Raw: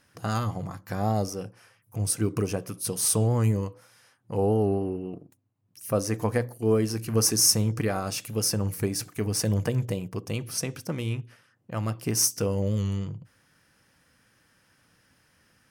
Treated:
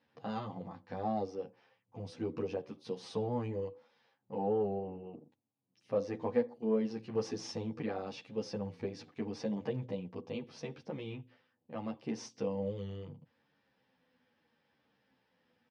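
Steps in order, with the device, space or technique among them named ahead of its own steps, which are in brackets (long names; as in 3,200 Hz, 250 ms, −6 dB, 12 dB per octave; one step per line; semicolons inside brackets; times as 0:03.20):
barber-pole flanger into a guitar amplifier (barber-pole flanger 10.5 ms −0.75 Hz; soft clipping −15.5 dBFS, distortion −24 dB; loudspeaker in its box 99–4,200 Hz, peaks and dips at 110 Hz −7 dB, 240 Hz +8 dB, 490 Hz +8 dB, 840 Hz +8 dB, 1,400 Hz −5 dB, 3,600 Hz +4 dB)
level −8.5 dB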